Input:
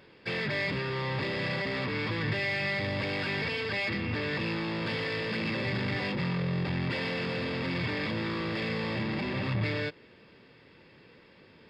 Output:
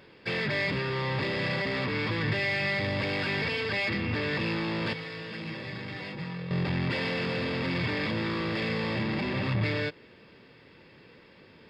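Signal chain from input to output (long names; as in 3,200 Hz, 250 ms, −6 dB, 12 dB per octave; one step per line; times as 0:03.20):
0:04.93–0:06.51: tuned comb filter 160 Hz, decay 0.21 s, harmonics all, mix 80%
level +2 dB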